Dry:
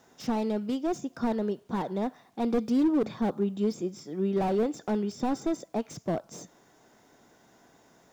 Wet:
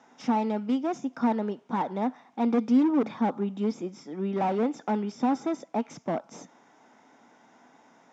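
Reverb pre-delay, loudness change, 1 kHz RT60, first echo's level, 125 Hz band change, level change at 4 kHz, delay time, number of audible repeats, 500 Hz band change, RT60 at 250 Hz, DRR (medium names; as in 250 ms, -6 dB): no reverb, +1.5 dB, no reverb, no echo, -1.0 dB, -2.0 dB, no echo, no echo, -1.0 dB, no reverb, no reverb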